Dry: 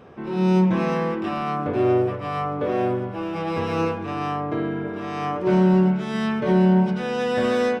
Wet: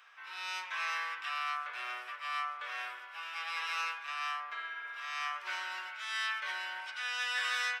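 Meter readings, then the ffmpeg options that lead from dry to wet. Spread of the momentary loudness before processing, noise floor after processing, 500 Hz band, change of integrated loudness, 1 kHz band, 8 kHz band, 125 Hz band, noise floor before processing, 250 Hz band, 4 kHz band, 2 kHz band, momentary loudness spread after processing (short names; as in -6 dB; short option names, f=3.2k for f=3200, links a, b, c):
10 LU, -48 dBFS, -36.0 dB, -14.0 dB, -11.5 dB, n/a, under -40 dB, -31 dBFS, under -40 dB, 0.0 dB, -1.0 dB, 7 LU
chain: -af "highpass=f=1.4k:w=0.5412,highpass=f=1.4k:w=1.3066"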